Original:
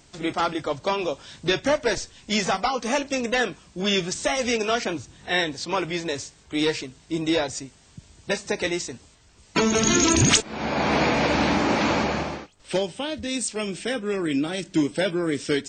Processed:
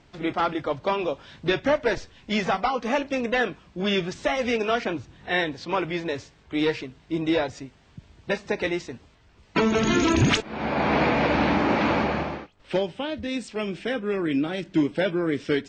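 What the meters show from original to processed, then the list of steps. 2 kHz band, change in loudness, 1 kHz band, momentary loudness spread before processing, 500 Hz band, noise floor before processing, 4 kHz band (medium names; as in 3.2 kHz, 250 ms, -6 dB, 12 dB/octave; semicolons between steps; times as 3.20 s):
-1.0 dB, -1.0 dB, 0.0 dB, 10 LU, 0.0 dB, -55 dBFS, -5.0 dB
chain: low-pass 3 kHz 12 dB/octave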